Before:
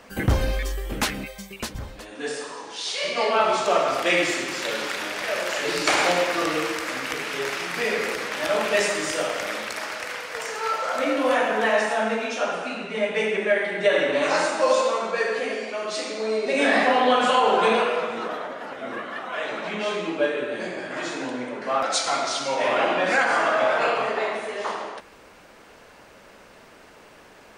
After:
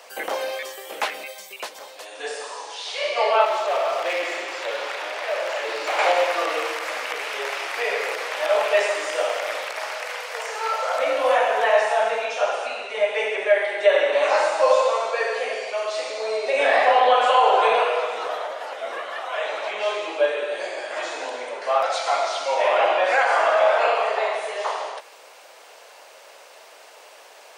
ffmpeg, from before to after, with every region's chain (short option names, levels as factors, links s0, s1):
-filter_complex "[0:a]asettb=1/sr,asplit=3[s0][s1][s2];[s0]atrim=end=3.454[s3];[s1]atrim=start=3.45:end=5.99,asetpts=PTS-STARTPTS,afade=t=in:d=0.004:c=qsin,afade=t=out:st=2.536:d=0.004:c=qsin,lowpass=f=2600:p=1,asoftclip=type=hard:threshold=0.0708[s4];[s2]atrim=start=5.986[s5];[s3][s4]acrossfade=d=0.004:c1=hsin:c2=qsin[s6];[s6][s5]acrossfade=d=0.004:c1=qsin:c2=hsin,acrossover=split=2800[s7][s8];[s8]acompressor=threshold=0.00562:ratio=4:attack=1:release=60[s9];[s7][s9]amix=inputs=2:normalize=0,highpass=f=560:w=0.5412,highpass=f=560:w=1.3066,equalizer=f=1500:t=o:w=1.5:g=-8,volume=2.51"